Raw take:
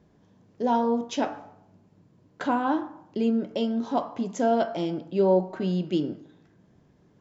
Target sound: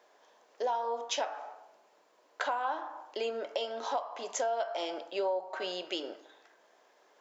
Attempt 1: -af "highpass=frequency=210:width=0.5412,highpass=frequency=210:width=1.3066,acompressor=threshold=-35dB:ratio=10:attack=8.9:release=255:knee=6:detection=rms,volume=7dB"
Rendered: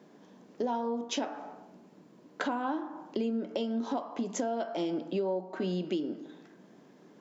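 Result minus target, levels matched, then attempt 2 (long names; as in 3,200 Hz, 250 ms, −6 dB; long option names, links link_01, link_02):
250 Hz band +14.0 dB
-af "highpass=frequency=560:width=0.5412,highpass=frequency=560:width=1.3066,acompressor=threshold=-35dB:ratio=10:attack=8.9:release=255:knee=6:detection=rms,volume=7dB"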